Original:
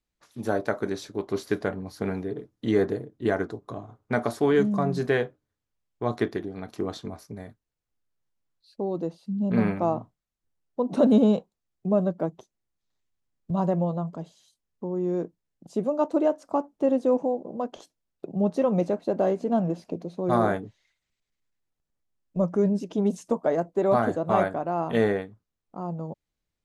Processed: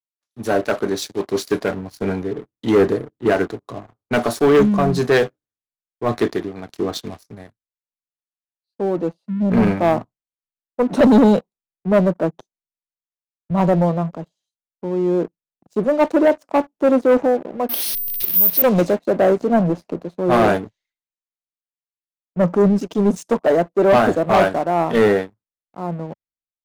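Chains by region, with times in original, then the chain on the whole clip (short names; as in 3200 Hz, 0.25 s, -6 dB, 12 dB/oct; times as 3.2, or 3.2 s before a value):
17.69–18.62 delta modulation 32 kbps, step -36.5 dBFS + compressor 1.5:1, threshold -41 dBFS + careless resampling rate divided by 3×, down filtered, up zero stuff
whole clip: low shelf 120 Hz -7 dB; sample leveller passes 3; three-band expander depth 70%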